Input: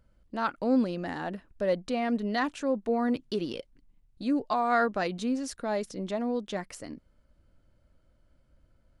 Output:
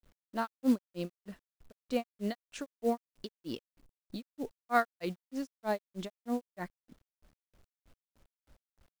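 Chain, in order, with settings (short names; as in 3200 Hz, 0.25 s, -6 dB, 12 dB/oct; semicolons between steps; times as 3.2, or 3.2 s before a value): grains 0.166 s, grains 3.2/s; companded quantiser 6-bit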